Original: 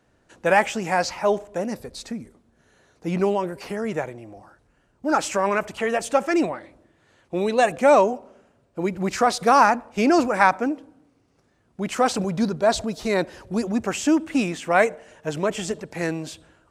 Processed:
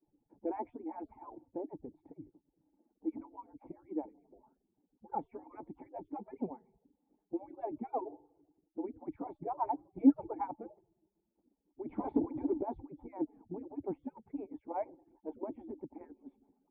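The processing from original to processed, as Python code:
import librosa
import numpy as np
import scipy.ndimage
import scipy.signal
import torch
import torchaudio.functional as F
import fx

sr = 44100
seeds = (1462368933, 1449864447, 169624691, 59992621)

y = fx.hpss_only(x, sr, part='percussive')
y = fx.low_shelf(y, sr, hz=470.0, db=4.5, at=(9.42, 10.45))
y = fx.leveller(y, sr, passes=3, at=(11.89, 12.63))
y = fx.formant_cascade(y, sr, vowel='u')
y = y * 10.0 ** (1.0 / 20.0)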